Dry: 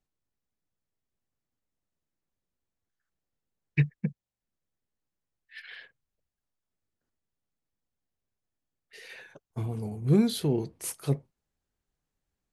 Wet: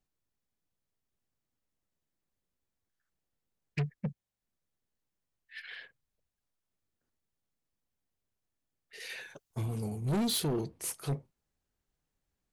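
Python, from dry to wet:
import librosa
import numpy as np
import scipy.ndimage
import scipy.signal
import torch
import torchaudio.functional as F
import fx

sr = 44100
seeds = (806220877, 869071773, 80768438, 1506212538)

y = fx.high_shelf(x, sr, hz=2700.0, db=9.5, at=(9.0, 10.61))
y = 10.0 ** (-27.0 / 20.0) * np.tanh(y / 10.0 ** (-27.0 / 20.0))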